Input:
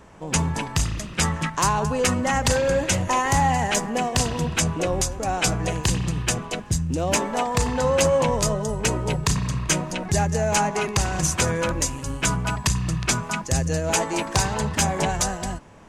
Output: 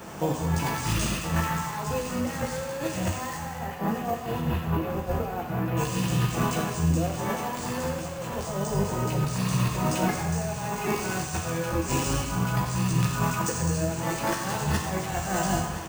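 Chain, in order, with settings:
wavefolder on the positive side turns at −17.5 dBFS
spectral tilt +2 dB per octave
notch filter 3,800 Hz, Q 23
hum removal 102.2 Hz, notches 16
compressor whose output falls as the input rises −34 dBFS, ratio −1
0:03.37–0:05.77: high-frequency loss of the air 370 metres
repeating echo 1,020 ms, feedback 59%, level −13 dB
convolution reverb RT60 1.1 s, pre-delay 3 ms, DRR 0 dB
bad sample-rate conversion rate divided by 3×, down none, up hold

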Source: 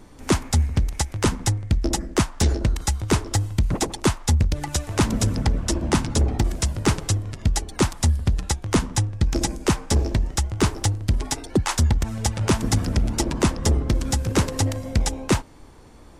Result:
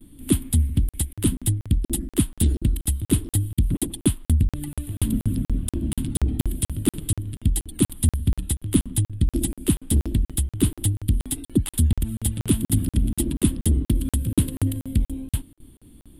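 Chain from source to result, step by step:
noise gate with hold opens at −39 dBFS
drawn EQ curve 180 Hz 0 dB, 290 Hz +4 dB, 470 Hz −14 dB, 870 Hz −21 dB, 2,300 Hz −12 dB, 3,300 Hz 0 dB, 6,000 Hz −23 dB, 9,600 Hz +10 dB
regular buffer underruns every 0.24 s, samples 2,048, zero, from 0:00.89

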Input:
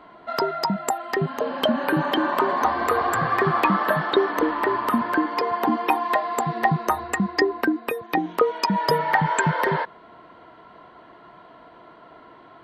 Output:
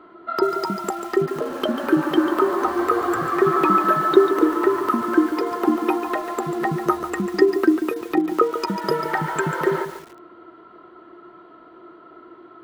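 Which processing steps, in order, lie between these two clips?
hollow resonant body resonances 350/1,300 Hz, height 18 dB, ringing for 55 ms
feedback echo at a low word length 143 ms, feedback 35%, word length 5 bits, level −9 dB
level −5.5 dB

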